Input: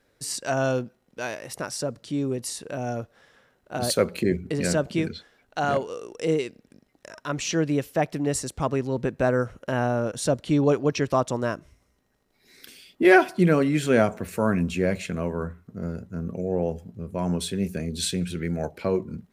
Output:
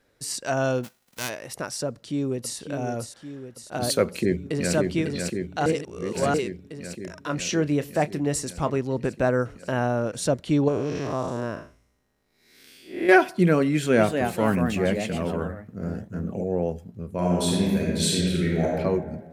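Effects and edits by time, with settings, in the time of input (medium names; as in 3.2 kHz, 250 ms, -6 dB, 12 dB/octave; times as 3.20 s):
0.83–1.28 s: formants flattened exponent 0.3
1.88–2.57 s: echo throw 560 ms, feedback 65%, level -8 dB
4.07–4.74 s: echo throw 550 ms, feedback 75%, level -4 dB
5.66–6.34 s: reverse
7.21–8.78 s: doubling 27 ms -13 dB
10.68–13.09 s: spectral blur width 183 ms
13.72–16.48 s: ever faster or slower copies 261 ms, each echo +2 st, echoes 2, each echo -6 dB
17.14–18.76 s: reverb throw, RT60 1.6 s, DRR -4 dB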